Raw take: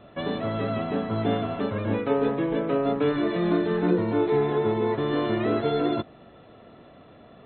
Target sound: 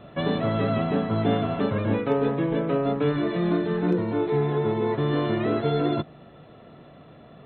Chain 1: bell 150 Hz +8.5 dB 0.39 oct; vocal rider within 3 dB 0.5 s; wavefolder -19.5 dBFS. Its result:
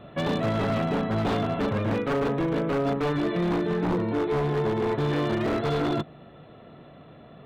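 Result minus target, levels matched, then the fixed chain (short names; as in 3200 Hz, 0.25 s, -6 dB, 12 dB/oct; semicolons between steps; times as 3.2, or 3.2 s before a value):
wavefolder: distortion +37 dB
bell 150 Hz +8.5 dB 0.39 oct; vocal rider within 3 dB 0.5 s; wavefolder -11 dBFS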